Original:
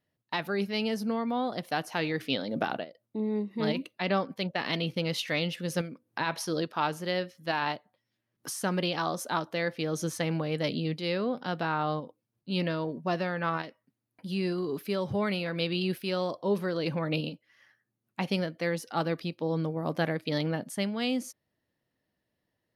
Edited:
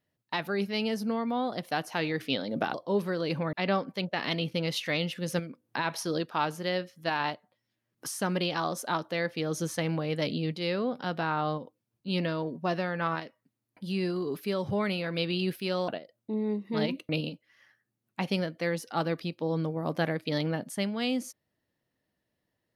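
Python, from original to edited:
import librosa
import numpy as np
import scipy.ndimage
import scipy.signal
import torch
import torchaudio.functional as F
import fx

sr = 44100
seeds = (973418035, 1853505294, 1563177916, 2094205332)

y = fx.edit(x, sr, fx.swap(start_s=2.74, length_s=1.21, other_s=16.3, other_length_s=0.79), tone=tone)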